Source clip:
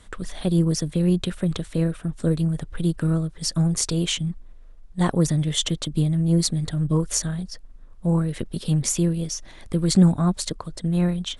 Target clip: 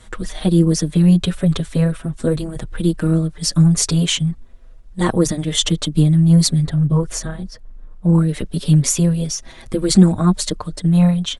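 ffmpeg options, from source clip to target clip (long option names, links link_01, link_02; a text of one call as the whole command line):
ffmpeg -i in.wav -filter_complex "[0:a]asettb=1/sr,asplit=3[link_01][link_02][link_03];[link_01]atrim=end=6.624[link_04];[link_02]atrim=start=6.62:end=8.14,asetpts=PTS-STARTPTS,afade=type=in:duration=0.004:curve=qsin,afade=type=out:start_time=1.516:duration=0.004:curve=qsin,highshelf=frequency=2700:gain=-9.5[link_05];[link_03]atrim=start=8.136[link_06];[link_04][link_05]acrossfade=duration=0.004:curve1=hsin:curve2=qsin[link_07];[link_07][link_06]acrossfade=duration=0.004:curve1=qsin:curve2=hsin,asplit=2[link_08][link_09];[link_09]adelay=5.8,afreqshift=-0.41[link_10];[link_08][link_10]amix=inputs=2:normalize=1,volume=9dB" out.wav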